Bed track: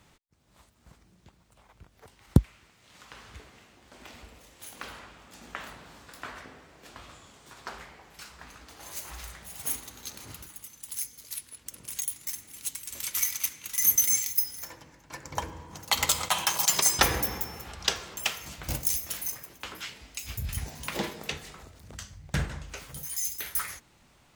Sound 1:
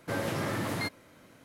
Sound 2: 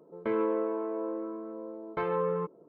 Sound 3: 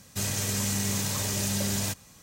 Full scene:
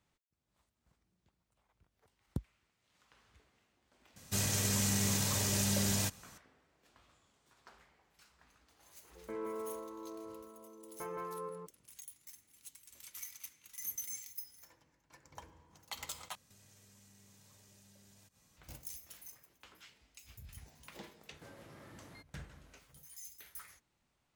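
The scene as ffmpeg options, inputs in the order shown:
-filter_complex "[3:a]asplit=2[s0][s1];[0:a]volume=0.112[s2];[2:a]aecho=1:1:52.48|169.1:0.282|0.708[s3];[s1]acompressor=threshold=0.00501:ratio=6:attack=3.2:release=140:knee=1:detection=peak[s4];[1:a]acompressor=threshold=0.00708:ratio=4:attack=1.2:release=527:knee=1:detection=peak[s5];[s2]asplit=2[s6][s7];[s6]atrim=end=16.354[s8];[s4]atrim=end=2.22,asetpts=PTS-STARTPTS,volume=0.168[s9];[s7]atrim=start=18.566[s10];[s0]atrim=end=2.22,asetpts=PTS-STARTPTS,volume=0.668,afade=t=in:d=0.004:c=hsin,afade=t=out:st=2.216:d=0.004:c=hsin,adelay=4160[s11];[s3]atrim=end=2.68,asetpts=PTS-STARTPTS,volume=0.224,afade=t=in:d=0.004:c=hsin,afade=t=out:st=2.676:d=0.004:c=hsin,adelay=9030[s12];[s5]atrim=end=1.44,asetpts=PTS-STARTPTS,volume=0.355,afade=t=in:d=0.004:c=hsin,afade=t=out:st=1.436:d=0.004:c=hsin,adelay=21340[s13];[s8][s9]acrossfade=d=0.004:c1=hsin:c2=hsin[s14];[s14][s10]acrossfade=d=0.004:c1=hsin:c2=hsin[s15];[s15][s11][s12][s13]amix=inputs=4:normalize=0"

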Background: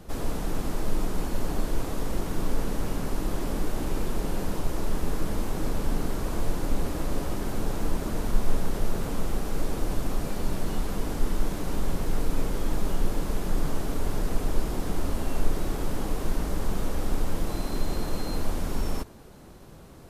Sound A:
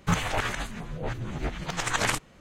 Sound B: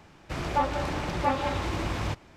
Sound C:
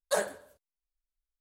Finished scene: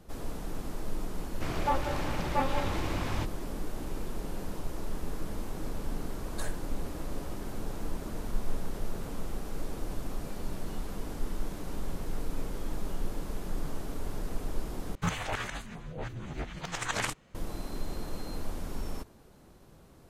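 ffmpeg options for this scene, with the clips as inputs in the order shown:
-filter_complex "[0:a]volume=0.398[s0];[3:a]highpass=1100[s1];[s0]asplit=2[s2][s3];[s2]atrim=end=14.954[s4];[1:a]atrim=end=2.4,asetpts=PTS-STARTPTS,volume=0.501[s5];[s3]atrim=start=17.346[s6];[2:a]atrim=end=2.36,asetpts=PTS-STARTPTS,volume=0.668,afade=t=in:d=0.004:c=hsin,afade=t=out:st=2.356:d=0.004:c=hsin,adelay=1110[s7];[s1]atrim=end=1.4,asetpts=PTS-STARTPTS,volume=0.376,afade=t=in:d=0.004:c=hsin,afade=t=out:st=1.396:d=0.004:c=hsin,adelay=6270[s8];[s4][s5]acrossfade=d=0.004:c1=hsin:c2=hsin[s9];[s9][s6]acrossfade=d=0.004:c1=hsin:c2=hsin[s10];[s10][s7][s8]amix=inputs=3:normalize=0"

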